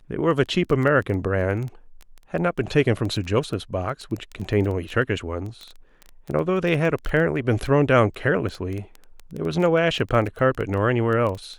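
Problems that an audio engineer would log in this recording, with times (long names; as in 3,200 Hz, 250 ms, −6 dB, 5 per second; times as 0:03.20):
surface crackle 13 per second −27 dBFS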